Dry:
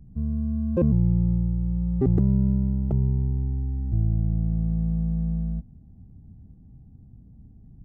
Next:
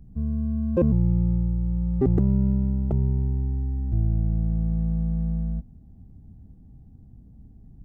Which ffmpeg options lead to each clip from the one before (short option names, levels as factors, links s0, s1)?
-af "equalizer=f=130:t=o:w=1.8:g=-4.5,volume=1.41"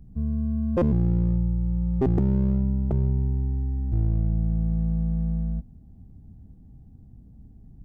-af "asoftclip=type=hard:threshold=0.168"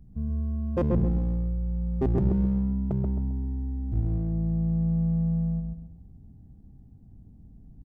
-filter_complex "[0:a]asplit=2[s0][s1];[s1]adelay=133,lowpass=f=1700:p=1,volume=0.708,asplit=2[s2][s3];[s3]adelay=133,lowpass=f=1700:p=1,volume=0.36,asplit=2[s4][s5];[s5]adelay=133,lowpass=f=1700:p=1,volume=0.36,asplit=2[s6][s7];[s7]adelay=133,lowpass=f=1700:p=1,volume=0.36,asplit=2[s8][s9];[s9]adelay=133,lowpass=f=1700:p=1,volume=0.36[s10];[s0][s2][s4][s6][s8][s10]amix=inputs=6:normalize=0,volume=0.668"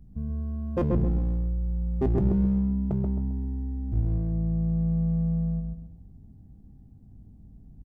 -filter_complex "[0:a]asplit=2[s0][s1];[s1]adelay=20,volume=0.251[s2];[s0][s2]amix=inputs=2:normalize=0"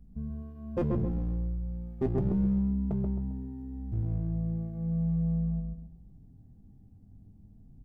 -af "flanger=delay=4.1:depth=7.1:regen=-40:speed=0.35:shape=triangular"